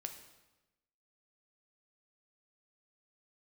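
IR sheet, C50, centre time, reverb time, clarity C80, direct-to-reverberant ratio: 9.0 dB, 18 ms, 1.1 s, 11.0 dB, 5.5 dB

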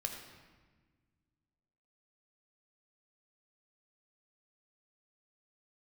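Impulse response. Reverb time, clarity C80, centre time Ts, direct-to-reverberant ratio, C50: 1.4 s, 6.0 dB, 39 ms, 3.0 dB, 5.0 dB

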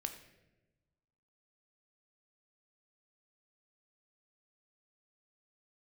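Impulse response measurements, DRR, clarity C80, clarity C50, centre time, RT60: 6.0 dB, 11.5 dB, 9.5 dB, 15 ms, not exponential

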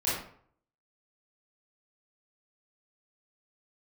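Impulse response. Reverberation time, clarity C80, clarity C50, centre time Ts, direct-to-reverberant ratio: 0.55 s, 5.5 dB, 0.5 dB, 57 ms, -10.0 dB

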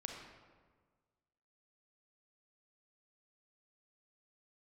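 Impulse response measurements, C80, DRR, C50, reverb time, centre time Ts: 4.5 dB, 1.0 dB, 2.5 dB, 1.5 s, 58 ms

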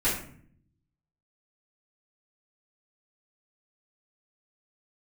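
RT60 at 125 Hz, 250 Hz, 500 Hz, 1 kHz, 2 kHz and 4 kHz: 1.2, 0.95, 0.60, 0.50, 0.50, 0.35 s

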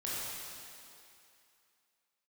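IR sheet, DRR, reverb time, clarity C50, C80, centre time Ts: -8.5 dB, 2.6 s, -4.5 dB, -2.0 dB, 0.178 s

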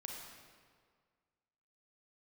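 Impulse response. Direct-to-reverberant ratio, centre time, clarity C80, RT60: -0.5 dB, 81 ms, 2.5 dB, 1.9 s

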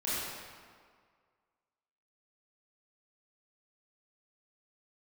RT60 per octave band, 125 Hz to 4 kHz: 1.6, 1.8, 1.8, 1.9, 1.6, 1.3 s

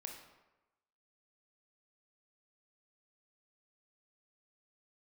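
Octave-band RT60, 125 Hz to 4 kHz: 0.90, 0.95, 1.0, 1.1, 0.90, 0.65 s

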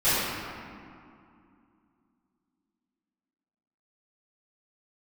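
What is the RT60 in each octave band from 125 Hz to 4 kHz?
2.7, 3.4, 2.4, 2.5, 1.9, 1.3 s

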